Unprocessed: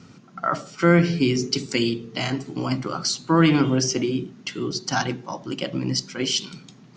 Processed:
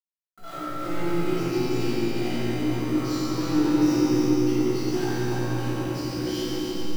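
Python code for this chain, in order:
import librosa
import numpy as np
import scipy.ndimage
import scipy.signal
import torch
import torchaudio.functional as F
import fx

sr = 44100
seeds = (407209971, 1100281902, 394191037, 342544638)

y = fx.delta_hold(x, sr, step_db=-32.0)
y = np.clip(10.0 ** (25.0 / 20.0) * y, -1.0, 1.0) / 10.0 ** (25.0 / 20.0)
y = fx.peak_eq(y, sr, hz=340.0, db=11.5, octaves=0.39)
y = fx.comb_fb(y, sr, f0_hz=61.0, decay_s=0.62, harmonics='all', damping=0.0, mix_pct=90)
y = fx.echo_heads(y, sr, ms=140, heads='first and second', feedback_pct=59, wet_db=-8.5)
y = fx.room_shoebox(y, sr, seeds[0], volume_m3=170.0, walls='hard', distance_m=1.6)
y = fx.echo_crushed(y, sr, ms=90, feedback_pct=80, bits=7, wet_db=-7)
y = F.gain(torch.from_numpy(y), -6.5).numpy()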